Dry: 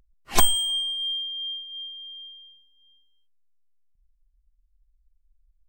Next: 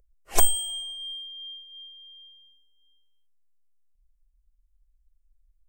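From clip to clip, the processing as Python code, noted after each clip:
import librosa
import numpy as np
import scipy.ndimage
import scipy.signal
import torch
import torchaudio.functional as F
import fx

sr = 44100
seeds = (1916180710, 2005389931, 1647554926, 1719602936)

y = fx.graphic_eq_10(x, sr, hz=(125, 250, 500, 1000, 2000, 4000, 8000), db=(-11, -11, 7, -7, -3, -10, 3))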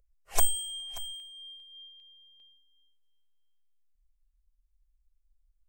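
y = x + 10.0 ** (-17.5 / 20.0) * np.pad(x, (int(581 * sr / 1000.0), 0))[:len(x)]
y = fx.filter_held_notch(y, sr, hz=2.5, low_hz=290.0, high_hz=2100.0)
y = y * librosa.db_to_amplitude(-5.0)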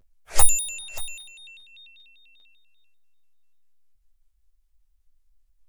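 y = fx.room_early_taps(x, sr, ms=(13, 25), db=(-3.5, -9.5))
y = fx.vibrato_shape(y, sr, shape='square', rate_hz=5.1, depth_cents=250.0)
y = y * librosa.db_to_amplitude(5.5)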